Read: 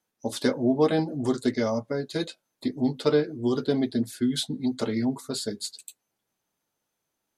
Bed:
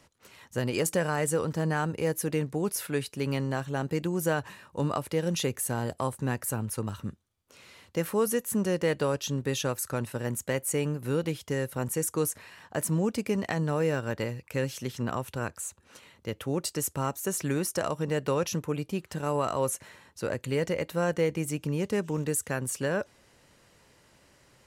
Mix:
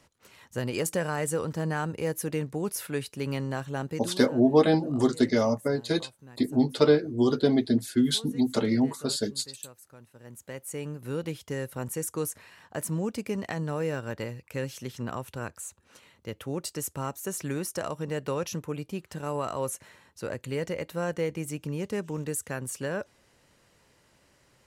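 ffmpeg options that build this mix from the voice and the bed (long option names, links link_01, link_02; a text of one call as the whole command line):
ffmpeg -i stem1.wav -i stem2.wav -filter_complex "[0:a]adelay=3750,volume=2dB[link_01];[1:a]volume=16dB,afade=type=out:start_time=3.81:duration=0.43:silence=0.112202,afade=type=in:start_time=10.14:duration=1.17:silence=0.133352[link_02];[link_01][link_02]amix=inputs=2:normalize=0" out.wav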